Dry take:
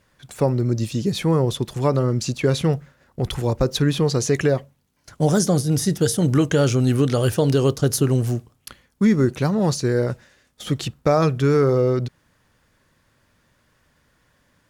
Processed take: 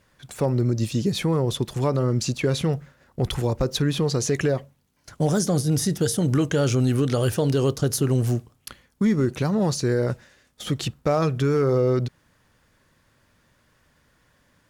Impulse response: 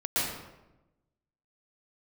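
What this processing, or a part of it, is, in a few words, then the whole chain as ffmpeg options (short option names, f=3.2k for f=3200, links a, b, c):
clipper into limiter: -af "asoftclip=type=hard:threshold=-9.5dB,alimiter=limit=-13.5dB:level=0:latency=1:release=117"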